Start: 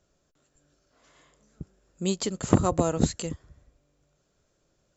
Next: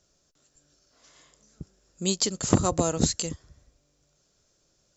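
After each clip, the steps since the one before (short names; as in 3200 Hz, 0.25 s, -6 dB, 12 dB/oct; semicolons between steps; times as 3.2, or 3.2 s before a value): bell 5500 Hz +11.5 dB 1.2 oct; gain -1 dB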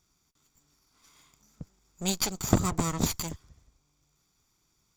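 minimum comb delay 0.87 ms; gain -1.5 dB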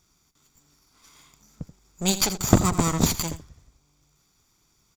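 echo 82 ms -13.5 dB; gain +6 dB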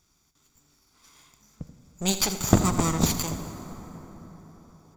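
plate-style reverb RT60 4.7 s, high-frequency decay 0.45×, DRR 9 dB; gain -2 dB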